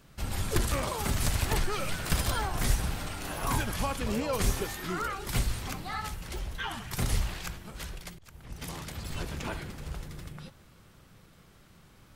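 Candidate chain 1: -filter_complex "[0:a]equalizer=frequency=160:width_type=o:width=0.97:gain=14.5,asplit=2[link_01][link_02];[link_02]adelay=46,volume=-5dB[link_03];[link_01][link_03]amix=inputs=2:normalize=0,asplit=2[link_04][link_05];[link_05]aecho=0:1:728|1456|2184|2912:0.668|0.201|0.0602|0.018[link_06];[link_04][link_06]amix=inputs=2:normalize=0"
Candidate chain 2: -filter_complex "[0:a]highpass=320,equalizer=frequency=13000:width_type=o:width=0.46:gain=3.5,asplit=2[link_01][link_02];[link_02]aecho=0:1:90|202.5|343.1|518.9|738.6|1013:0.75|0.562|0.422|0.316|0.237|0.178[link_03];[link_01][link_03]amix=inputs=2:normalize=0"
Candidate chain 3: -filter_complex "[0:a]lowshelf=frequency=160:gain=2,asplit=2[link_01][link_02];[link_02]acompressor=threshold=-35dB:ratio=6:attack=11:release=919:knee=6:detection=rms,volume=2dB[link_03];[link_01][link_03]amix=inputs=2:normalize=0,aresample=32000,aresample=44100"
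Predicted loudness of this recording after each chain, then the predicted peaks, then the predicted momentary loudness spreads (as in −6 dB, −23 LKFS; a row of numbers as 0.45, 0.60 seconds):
−26.0, −31.5, −29.5 LKFS; −7.5, −14.5, −9.5 dBFS; 11, 13, 11 LU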